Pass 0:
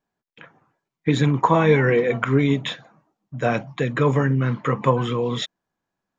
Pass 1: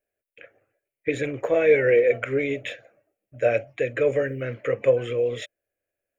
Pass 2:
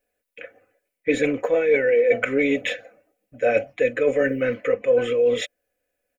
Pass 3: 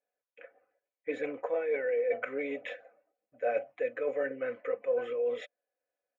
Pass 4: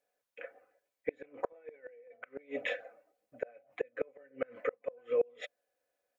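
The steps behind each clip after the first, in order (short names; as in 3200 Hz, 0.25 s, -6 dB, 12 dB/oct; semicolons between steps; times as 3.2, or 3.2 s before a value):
EQ curve 110 Hz 0 dB, 160 Hz -19 dB, 580 Hz +11 dB, 970 Hz -21 dB, 1500 Hz -1 dB, 2500 Hz +7 dB, 3700 Hz -9 dB, 6200 Hz -5 dB, 10000 Hz +10 dB; gain -4.5 dB
comb 4 ms, depth 69%; reverse; compressor 6:1, threshold -22 dBFS, peak gain reduction 12.5 dB; reverse; gain +6 dB
band-pass 880 Hz, Q 1.2; gain -6.5 dB
flipped gate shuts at -25 dBFS, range -32 dB; gain +5.5 dB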